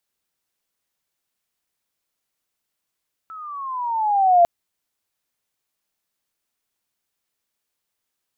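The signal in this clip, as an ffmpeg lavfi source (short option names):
-f lavfi -i "aevalsrc='pow(10,(-9+25*(t/1.15-1))/20)*sin(2*PI*1320*1.15/(-11.5*log(2)/12)*(exp(-11.5*log(2)/12*t/1.15)-1))':d=1.15:s=44100"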